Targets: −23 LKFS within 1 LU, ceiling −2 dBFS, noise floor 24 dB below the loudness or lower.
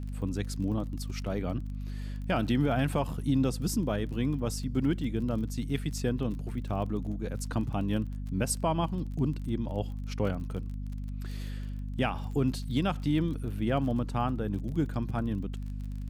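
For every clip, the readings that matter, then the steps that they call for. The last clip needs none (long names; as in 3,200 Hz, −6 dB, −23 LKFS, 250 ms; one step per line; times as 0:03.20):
crackle rate 30 per second; mains hum 50 Hz; hum harmonics up to 250 Hz; level of the hum −33 dBFS; integrated loudness −32.0 LKFS; sample peak −15.0 dBFS; target loudness −23.0 LKFS
→ click removal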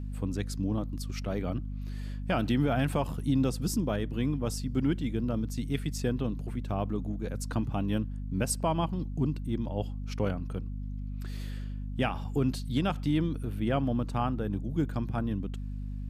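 crackle rate 0 per second; mains hum 50 Hz; hum harmonics up to 250 Hz; level of the hum −33 dBFS
→ mains-hum notches 50/100/150/200/250 Hz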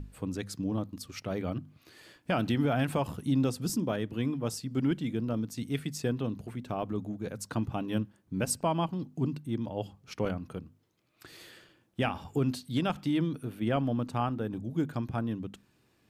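mains hum none found; integrated loudness −32.5 LKFS; sample peak −15.0 dBFS; target loudness −23.0 LKFS
→ level +9.5 dB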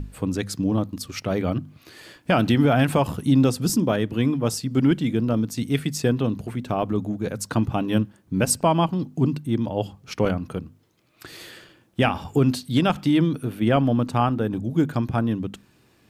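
integrated loudness −23.0 LKFS; sample peak −5.5 dBFS; background noise floor −60 dBFS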